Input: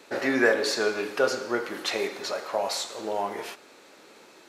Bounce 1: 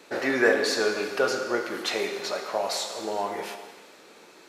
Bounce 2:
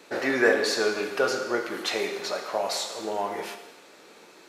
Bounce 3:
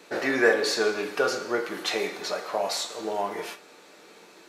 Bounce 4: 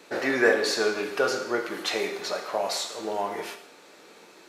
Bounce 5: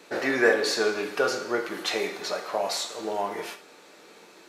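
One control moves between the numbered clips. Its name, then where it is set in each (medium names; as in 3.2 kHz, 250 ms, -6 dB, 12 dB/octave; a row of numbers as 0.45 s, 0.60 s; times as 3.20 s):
gated-style reverb, gate: 530 ms, 360 ms, 80 ms, 210 ms, 120 ms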